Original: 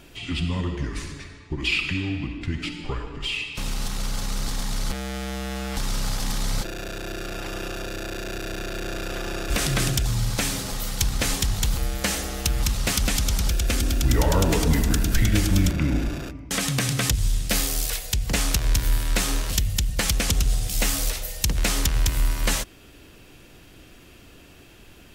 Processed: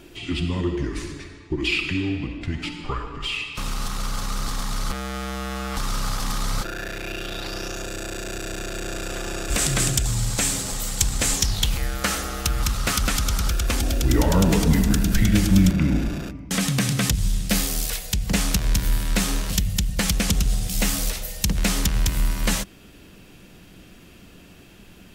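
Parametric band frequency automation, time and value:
parametric band +10 dB 0.44 octaves
0:02.06 340 Hz
0:02.87 1,200 Hz
0:06.59 1,200 Hz
0:07.87 7,700 Hz
0:11.34 7,700 Hz
0:11.97 1,300 Hz
0:13.63 1,300 Hz
0:14.35 190 Hz

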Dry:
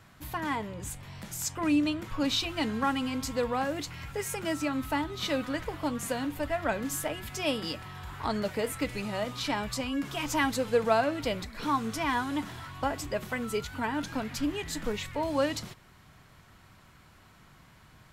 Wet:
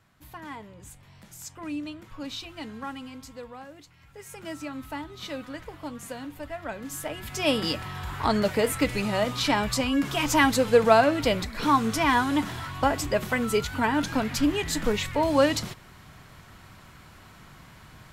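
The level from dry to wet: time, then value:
0:02.94 −8 dB
0:03.96 −16 dB
0:04.47 −5.5 dB
0:06.76 −5.5 dB
0:07.58 +7 dB

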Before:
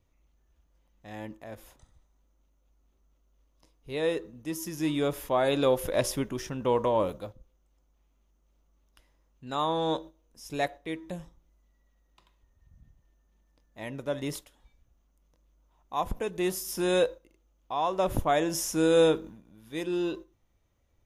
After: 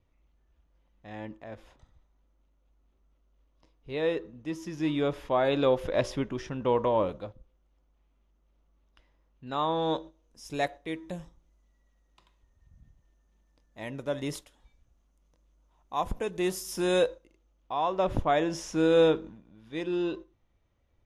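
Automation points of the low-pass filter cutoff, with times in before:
0:09.75 4,000 Hz
0:10.45 10,000 Hz
0:17.05 10,000 Hz
0:17.76 4,300 Hz

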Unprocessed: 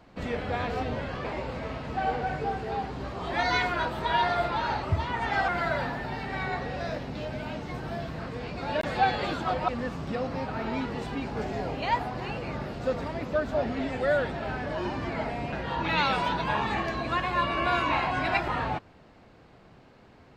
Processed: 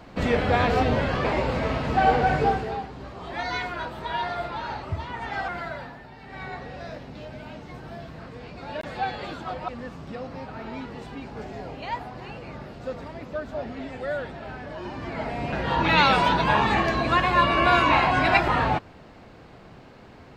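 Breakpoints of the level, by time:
0:02.47 +9 dB
0:02.89 −3.5 dB
0:05.53 −3.5 dB
0:06.15 −12 dB
0:06.43 −4.5 dB
0:14.81 −4.5 dB
0:15.72 +7 dB

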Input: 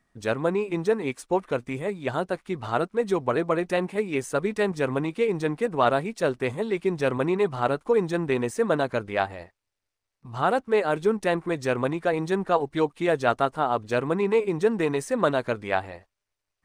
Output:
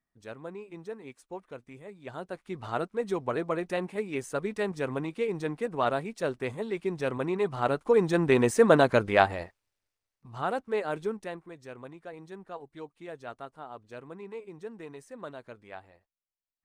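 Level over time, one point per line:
0:01.88 −16.5 dB
0:02.60 −6 dB
0:07.27 −6 dB
0:08.51 +4 dB
0:09.39 +4 dB
0:10.30 −7.5 dB
0:11.00 −7.5 dB
0:11.52 −19 dB

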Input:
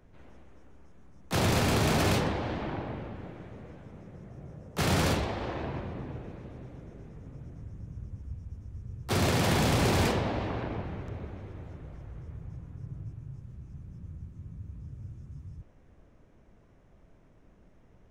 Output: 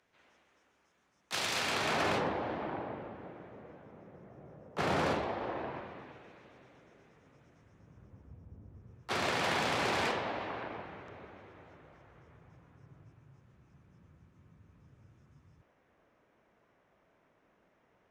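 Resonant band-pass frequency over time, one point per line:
resonant band-pass, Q 0.54
0:01.50 3,700 Hz
0:02.27 820 Hz
0:05.56 820 Hz
0:06.17 2,500 Hz
0:07.59 2,500 Hz
0:08.62 440 Hz
0:09.09 1,600 Hz

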